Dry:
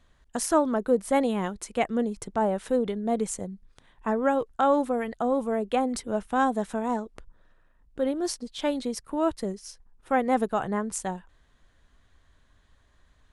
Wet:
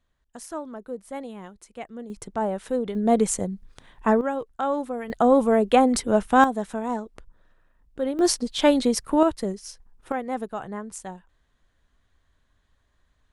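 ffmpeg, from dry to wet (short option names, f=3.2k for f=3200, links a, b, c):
-af "asetnsamples=n=441:p=0,asendcmd='2.1 volume volume -1dB;2.95 volume volume 7dB;4.21 volume volume -3.5dB;5.1 volume volume 8dB;6.44 volume volume 0dB;8.19 volume volume 9dB;9.23 volume volume 3dB;10.12 volume volume -5.5dB',volume=-11.5dB"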